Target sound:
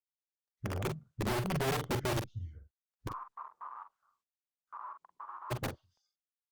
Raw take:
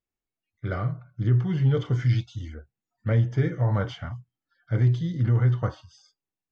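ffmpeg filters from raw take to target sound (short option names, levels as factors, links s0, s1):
-filter_complex "[0:a]afwtdn=0.0398,acompressor=threshold=0.0708:ratio=2,aeval=exprs='(mod(11.9*val(0)+1,2)-1)/11.9':c=same,asplit=3[s0][s1][s2];[s0]afade=t=out:st=3.07:d=0.02[s3];[s1]asuperpass=centerf=1100:order=4:qfactor=4.1,afade=t=in:st=3.07:d=0.02,afade=t=out:st=5.5:d=0.02[s4];[s2]afade=t=in:st=5.5:d=0.02[s5];[s3][s4][s5]amix=inputs=3:normalize=0,asplit=2[s6][s7];[s7]adelay=45,volume=0.398[s8];[s6][s8]amix=inputs=2:normalize=0,volume=0.473" -ar 48000 -c:a libopus -b:a 20k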